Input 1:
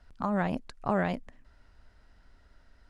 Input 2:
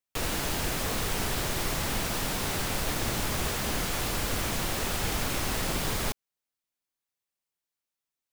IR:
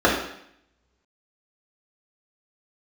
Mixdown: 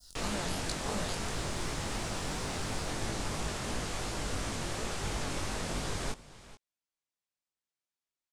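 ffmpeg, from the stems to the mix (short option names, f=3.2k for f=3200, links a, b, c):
-filter_complex "[0:a]aexciter=amount=14.8:drive=9.2:freq=3.7k,acompressor=threshold=-37dB:ratio=2,volume=-1.5dB[a];[1:a]lowpass=f=9.2k:w=0.5412,lowpass=f=9.2k:w=1.3066,volume=-1.5dB,asplit=2[b][c];[c]volume=-18dB,aecho=0:1:432:1[d];[a][b][d]amix=inputs=3:normalize=0,adynamicequalizer=threshold=0.00316:dfrequency=2700:dqfactor=0.74:tfrequency=2700:tqfactor=0.74:attack=5:release=100:ratio=0.375:range=1.5:mode=cutabove:tftype=bell,flanger=delay=18:depth=5.1:speed=2.9"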